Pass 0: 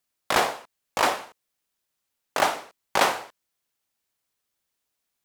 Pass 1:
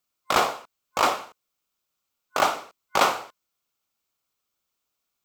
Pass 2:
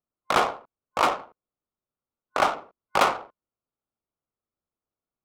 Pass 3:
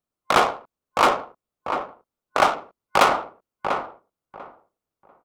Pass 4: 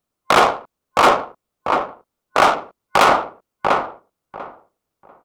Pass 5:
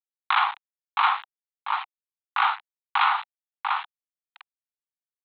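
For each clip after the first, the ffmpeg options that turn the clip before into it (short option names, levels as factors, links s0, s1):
-af "superequalizer=10b=1.58:11b=0.562:16b=0.562"
-af "adynamicsmooth=sensitivity=2:basefreq=860"
-filter_complex "[0:a]asplit=2[s0][s1];[s1]adelay=693,lowpass=f=1400:p=1,volume=0.501,asplit=2[s2][s3];[s3]adelay=693,lowpass=f=1400:p=1,volume=0.2,asplit=2[s4][s5];[s5]adelay=693,lowpass=f=1400:p=1,volume=0.2[s6];[s0][s2][s4][s6]amix=inputs=4:normalize=0,volume=1.58"
-af "alimiter=limit=0.316:level=0:latency=1:release=16,volume=2.37"
-af "aeval=exprs='val(0)*gte(abs(val(0)),0.0944)':c=same,asuperpass=centerf=1800:order=20:qfactor=0.57,volume=0.473"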